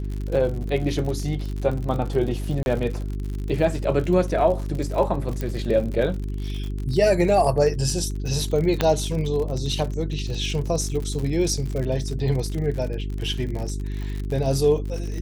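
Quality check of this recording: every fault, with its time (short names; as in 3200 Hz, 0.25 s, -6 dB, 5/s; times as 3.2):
crackle 62/s -29 dBFS
hum 50 Hz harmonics 8 -28 dBFS
2.63–2.66 gap 31 ms
5.41 pop -15 dBFS
8.81 pop -6 dBFS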